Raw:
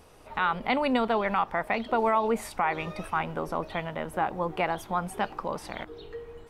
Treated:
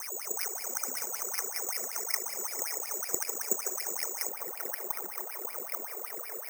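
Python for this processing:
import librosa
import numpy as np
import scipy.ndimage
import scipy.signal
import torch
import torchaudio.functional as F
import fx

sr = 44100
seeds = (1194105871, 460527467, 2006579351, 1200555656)

y = fx.bin_compress(x, sr, power=0.4)
y = fx.wah_lfo(y, sr, hz=5.3, low_hz=360.0, high_hz=2400.0, q=18.0)
y = fx.level_steps(y, sr, step_db=20)
y = fx.low_shelf(y, sr, hz=350.0, db=6.5)
y = fx.over_compress(y, sr, threshold_db=-45.0, ratio=-0.5)
y = fx.echo_stepped(y, sr, ms=150, hz=550.0, octaves=0.7, feedback_pct=70, wet_db=-4.0)
y = (np.kron(y[::6], np.eye(6)[0]) * 6)[:len(y)]
y = fx.peak_eq(y, sr, hz=6500.0, db=fx.steps((0.0, 3.5), (4.29, -9.0)), octaves=0.83)
y = F.gain(torch.from_numpy(y), 4.5).numpy()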